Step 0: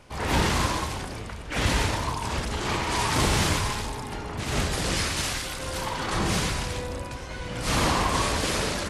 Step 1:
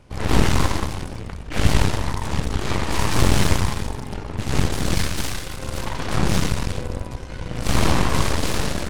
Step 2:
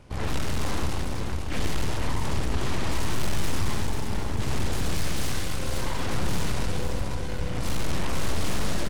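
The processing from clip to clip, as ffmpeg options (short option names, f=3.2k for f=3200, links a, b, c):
-af "aeval=exprs='0.266*(cos(1*acos(clip(val(0)/0.266,-1,1)))-cos(1*PI/2))+0.0299*(cos(3*acos(clip(val(0)/0.266,-1,1)))-cos(3*PI/2))+0.0841*(cos(4*acos(clip(val(0)/0.266,-1,1)))-cos(4*PI/2))+0.0133*(cos(8*acos(clip(val(0)/0.266,-1,1)))-cos(8*PI/2))':c=same,lowshelf=f=370:g=10,volume=-1dB"
-af "asoftclip=type=tanh:threshold=-18.5dB,aecho=1:1:493|986|1479|1972|2465:0.447|0.201|0.0905|0.0407|0.0183"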